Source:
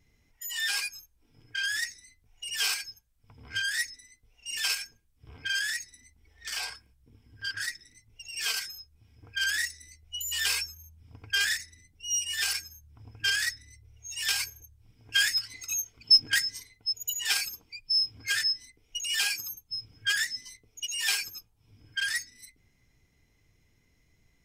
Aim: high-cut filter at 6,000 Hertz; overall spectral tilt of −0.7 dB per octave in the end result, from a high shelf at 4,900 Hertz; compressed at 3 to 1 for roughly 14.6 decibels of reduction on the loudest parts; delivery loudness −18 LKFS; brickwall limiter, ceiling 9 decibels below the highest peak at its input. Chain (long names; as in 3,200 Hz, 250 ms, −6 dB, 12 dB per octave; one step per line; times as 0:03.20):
low-pass filter 6,000 Hz
high-shelf EQ 4,900 Hz +7 dB
downward compressor 3 to 1, threshold −33 dBFS
level +19 dB
brickwall limiter −8.5 dBFS